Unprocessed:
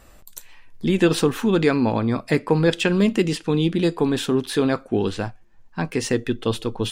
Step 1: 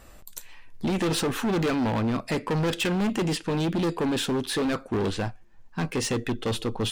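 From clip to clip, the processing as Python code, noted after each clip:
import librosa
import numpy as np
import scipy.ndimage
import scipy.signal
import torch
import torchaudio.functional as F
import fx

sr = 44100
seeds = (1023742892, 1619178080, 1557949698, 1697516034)

y = np.clip(x, -10.0 ** (-22.5 / 20.0), 10.0 ** (-22.5 / 20.0))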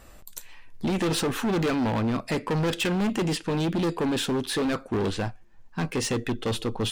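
y = x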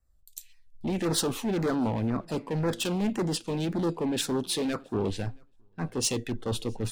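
y = fx.filter_lfo_notch(x, sr, shape='saw_down', hz=1.9, low_hz=980.0, high_hz=3400.0, q=1.2)
y = fx.echo_feedback(y, sr, ms=674, feedback_pct=25, wet_db=-22.5)
y = fx.band_widen(y, sr, depth_pct=100)
y = y * 10.0 ** (-2.5 / 20.0)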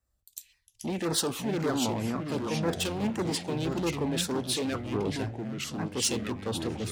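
y = scipy.signal.sosfilt(scipy.signal.butter(2, 51.0, 'highpass', fs=sr, output='sos'), x)
y = fx.low_shelf(y, sr, hz=340.0, db=-4.5)
y = fx.echo_pitch(y, sr, ms=334, semitones=-4, count=3, db_per_echo=-6.0)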